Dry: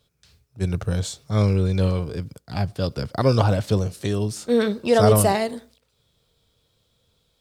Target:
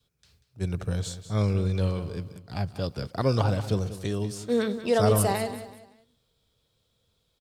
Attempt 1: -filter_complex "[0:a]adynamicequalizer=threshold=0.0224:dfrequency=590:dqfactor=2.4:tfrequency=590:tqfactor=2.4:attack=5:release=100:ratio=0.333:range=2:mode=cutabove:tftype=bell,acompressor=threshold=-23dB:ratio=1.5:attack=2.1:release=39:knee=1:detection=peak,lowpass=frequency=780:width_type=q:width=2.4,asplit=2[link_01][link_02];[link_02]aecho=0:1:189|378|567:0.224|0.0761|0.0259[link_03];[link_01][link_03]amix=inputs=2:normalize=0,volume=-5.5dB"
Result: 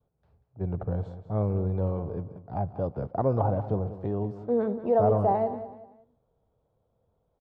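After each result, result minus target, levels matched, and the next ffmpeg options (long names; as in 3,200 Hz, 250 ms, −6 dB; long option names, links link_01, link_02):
downward compressor: peak gain reduction +5 dB; 1,000 Hz band +4.0 dB
-filter_complex "[0:a]adynamicequalizer=threshold=0.0224:dfrequency=590:dqfactor=2.4:tfrequency=590:tqfactor=2.4:attack=5:release=100:ratio=0.333:range=2:mode=cutabove:tftype=bell,lowpass=frequency=780:width_type=q:width=2.4,asplit=2[link_01][link_02];[link_02]aecho=0:1:189|378|567:0.224|0.0761|0.0259[link_03];[link_01][link_03]amix=inputs=2:normalize=0,volume=-5.5dB"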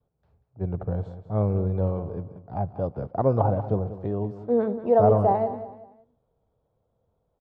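1,000 Hz band +4.0 dB
-filter_complex "[0:a]adynamicequalizer=threshold=0.0224:dfrequency=590:dqfactor=2.4:tfrequency=590:tqfactor=2.4:attack=5:release=100:ratio=0.333:range=2:mode=cutabove:tftype=bell,asplit=2[link_01][link_02];[link_02]aecho=0:1:189|378|567:0.224|0.0761|0.0259[link_03];[link_01][link_03]amix=inputs=2:normalize=0,volume=-5.5dB"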